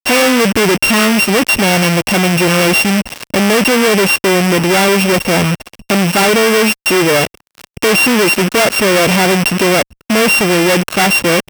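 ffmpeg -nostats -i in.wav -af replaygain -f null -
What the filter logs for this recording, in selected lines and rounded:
track_gain = -6.8 dB
track_peak = 0.496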